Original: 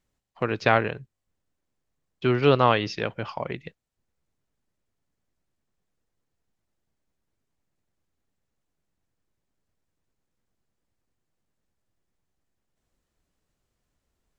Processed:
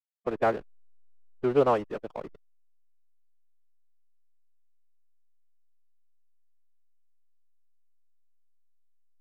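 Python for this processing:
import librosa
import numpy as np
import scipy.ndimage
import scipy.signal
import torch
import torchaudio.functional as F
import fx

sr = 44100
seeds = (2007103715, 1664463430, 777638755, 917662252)

y = fx.bandpass_q(x, sr, hz=520.0, q=0.91)
y = fx.backlash(y, sr, play_db=-29.5)
y = fx.stretch_vocoder(y, sr, factor=0.64)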